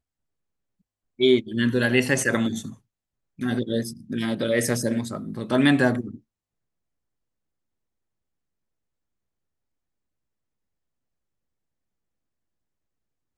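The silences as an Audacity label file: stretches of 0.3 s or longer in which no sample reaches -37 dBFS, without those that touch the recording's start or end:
2.730000	3.390000	silence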